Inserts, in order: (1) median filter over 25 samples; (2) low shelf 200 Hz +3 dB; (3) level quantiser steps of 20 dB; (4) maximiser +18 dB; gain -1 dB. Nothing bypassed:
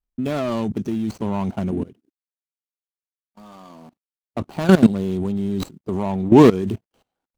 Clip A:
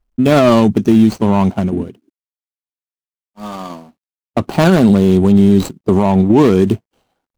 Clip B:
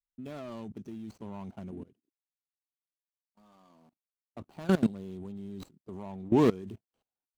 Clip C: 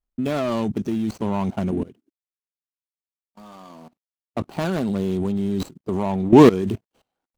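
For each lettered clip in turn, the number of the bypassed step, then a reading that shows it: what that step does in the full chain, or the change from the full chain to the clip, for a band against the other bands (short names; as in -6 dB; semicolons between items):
3, crest factor change -7.5 dB; 4, crest factor change +3.0 dB; 2, 1 kHz band +2.0 dB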